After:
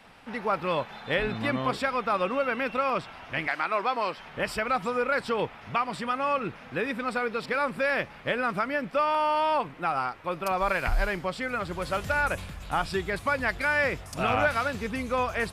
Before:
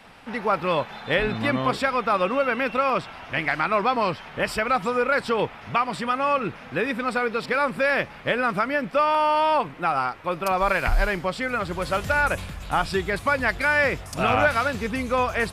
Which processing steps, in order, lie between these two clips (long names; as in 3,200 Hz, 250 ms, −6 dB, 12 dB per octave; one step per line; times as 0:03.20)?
0:03.47–0:04.17: Bessel high-pass filter 380 Hz, order 2
level −4.5 dB